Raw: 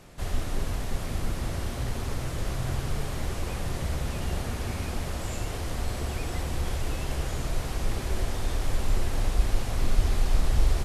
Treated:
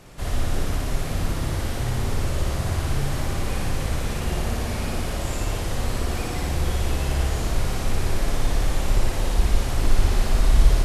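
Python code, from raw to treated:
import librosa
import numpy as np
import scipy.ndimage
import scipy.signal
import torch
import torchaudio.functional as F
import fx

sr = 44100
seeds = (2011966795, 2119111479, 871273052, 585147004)

y = fx.room_flutter(x, sr, wall_m=9.9, rt60_s=1.0)
y = y * 10.0 ** (3.0 / 20.0)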